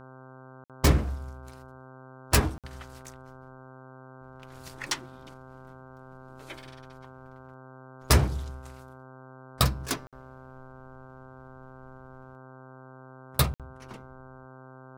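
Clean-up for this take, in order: de-hum 130.3 Hz, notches 12; interpolate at 0.64/2.58/10.07/13.54 s, 57 ms

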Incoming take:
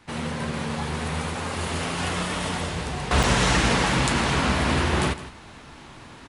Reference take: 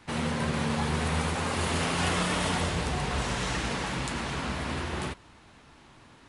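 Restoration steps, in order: interpolate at 3.23 s, 5 ms; inverse comb 160 ms -15 dB; trim 0 dB, from 3.11 s -10 dB

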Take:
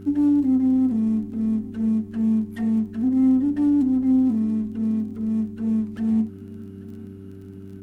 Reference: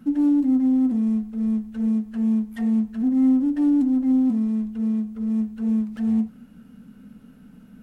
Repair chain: de-click; de-hum 97.2 Hz, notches 4; inverse comb 839 ms -20.5 dB

